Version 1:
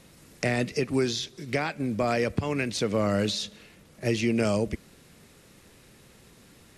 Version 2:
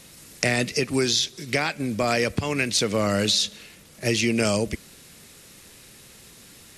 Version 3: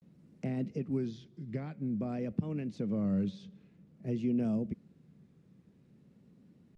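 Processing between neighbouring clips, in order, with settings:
treble shelf 2.3 kHz +10.5 dB; trim +1.5 dB
band-pass filter 180 Hz, Q 2.2; vibrato 0.51 Hz 100 cents; trim -1.5 dB

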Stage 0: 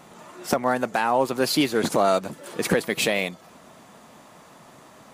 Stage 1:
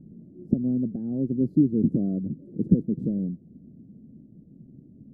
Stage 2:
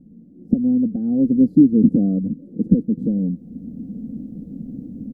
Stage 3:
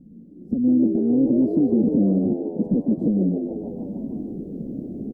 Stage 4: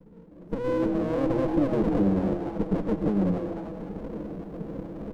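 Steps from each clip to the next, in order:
inverse Chebyshev low-pass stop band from 930 Hz, stop band 60 dB; trim +7.5 dB
comb 4 ms, depth 62%; level rider gain up to 16 dB; trim -1 dB
peak limiter -12.5 dBFS, peak gain reduction 10.5 dB; frequency-shifting echo 149 ms, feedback 54%, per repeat +74 Hz, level -7 dB
comb filter that takes the minimum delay 6.1 ms; reverberation, pre-delay 3 ms, DRR 10 dB; trim -3 dB

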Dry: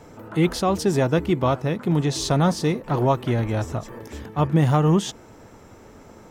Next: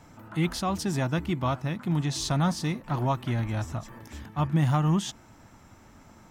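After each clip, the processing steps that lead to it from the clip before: peaking EQ 450 Hz -13.5 dB 0.69 oct; trim -4 dB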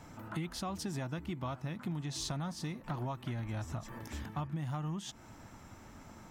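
compression 10:1, threshold -35 dBFS, peak gain reduction 15.5 dB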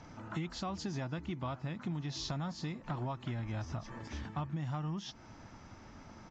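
knee-point frequency compression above 3.9 kHz 1.5:1; resampled via 16 kHz

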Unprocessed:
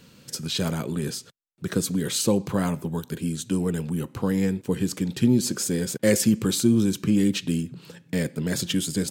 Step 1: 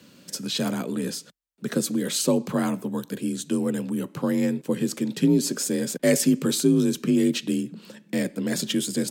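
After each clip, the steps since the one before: frequency shift +41 Hz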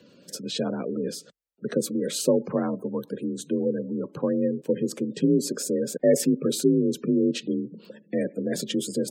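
peaking EQ 480 Hz +8.5 dB 0.83 oct; spectral gate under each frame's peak -25 dB strong; trim -4 dB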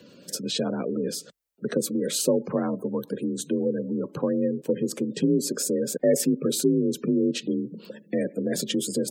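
treble shelf 8.8 kHz +5.5 dB; in parallel at +2 dB: compression, threshold -30 dBFS, peak gain reduction 15 dB; on the sum: trim -3.5 dB

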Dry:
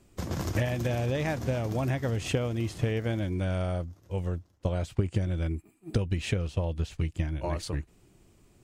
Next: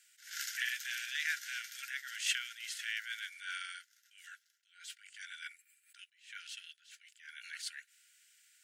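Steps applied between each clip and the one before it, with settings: Chebyshev high-pass 1.4 kHz, order 10; band-stop 2.5 kHz, Q 21; attacks held to a fixed rise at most 130 dB/s; trim +5 dB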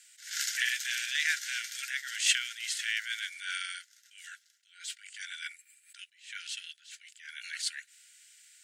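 graphic EQ 2/4/8 kHz +5/+6/+9 dB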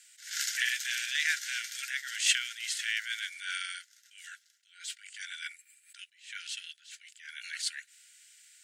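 no audible change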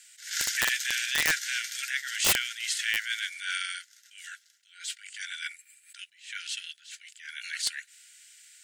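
integer overflow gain 19 dB; trim +4 dB

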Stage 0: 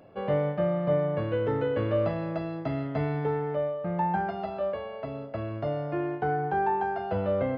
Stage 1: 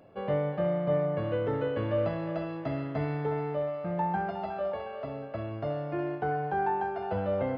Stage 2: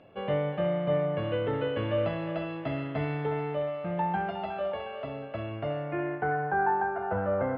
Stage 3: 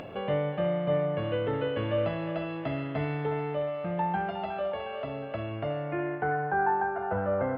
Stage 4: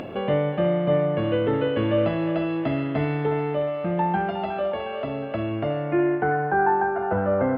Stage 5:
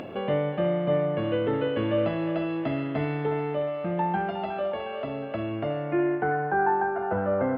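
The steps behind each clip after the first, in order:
thinning echo 362 ms, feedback 58%, high-pass 570 Hz, level -9.5 dB; trim -2.5 dB
low-pass sweep 3.1 kHz -> 1.5 kHz, 5.39–6.66 s
upward compressor, threshold -30 dBFS
small resonant body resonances 240/340 Hz, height 7 dB, ringing for 45 ms; trim +5 dB
bass shelf 78 Hz -6 dB; trim -3 dB

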